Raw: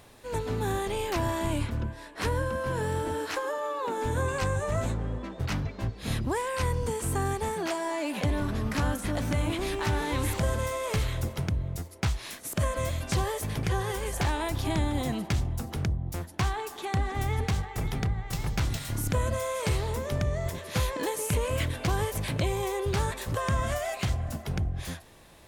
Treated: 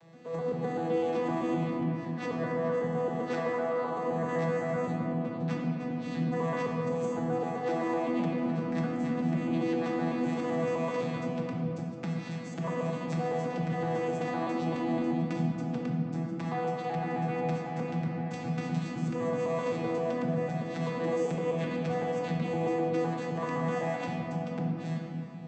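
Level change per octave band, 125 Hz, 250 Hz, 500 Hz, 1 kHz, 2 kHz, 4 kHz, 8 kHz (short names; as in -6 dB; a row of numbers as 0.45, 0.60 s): -5.0, +4.0, +1.5, -1.5, -5.0, -11.0, -16.5 dB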